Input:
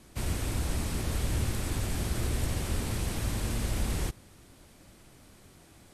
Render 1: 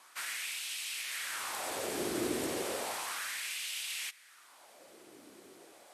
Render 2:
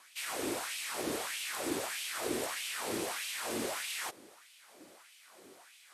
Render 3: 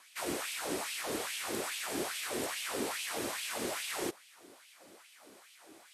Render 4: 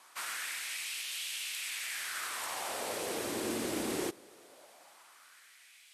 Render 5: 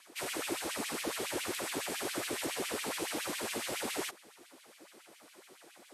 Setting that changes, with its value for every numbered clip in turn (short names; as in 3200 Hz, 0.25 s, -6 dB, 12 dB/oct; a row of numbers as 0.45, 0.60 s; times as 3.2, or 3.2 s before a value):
LFO high-pass, rate: 0.33, 1.6, 2.4, 0.2, 7.2 Hz